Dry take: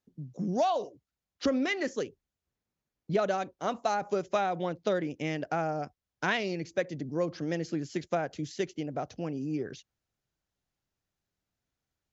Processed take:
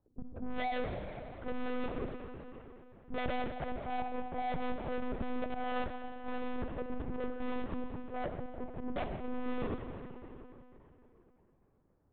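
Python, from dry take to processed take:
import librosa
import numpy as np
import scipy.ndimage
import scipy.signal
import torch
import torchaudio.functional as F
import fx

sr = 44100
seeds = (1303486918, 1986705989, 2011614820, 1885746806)

y = scipy.signal.sosfilt(scipy.signal.butter(4, 1200.0, 'lowpass', fs=sr, output='sos'), x)
y = fx.low_shelf(y, sr, hz=440.0, db=8.5)
y = fx.auto_swell(y, sr, attack_ms=238.0)
y = fx.tube_stage(y, sr, drive_db=42.0, bias=0.4)
y = fx.rev_freeverb(y, sr, rt60_s=3.5, hf_ratio=0.7, predelay_ms=5, drr_db=4.5)
y = fx.lpc_monotone(y, sr, seeds[0], pitch_hz=250.0, order=10)
y = y * 10.0 ** (8.0 / 20.0)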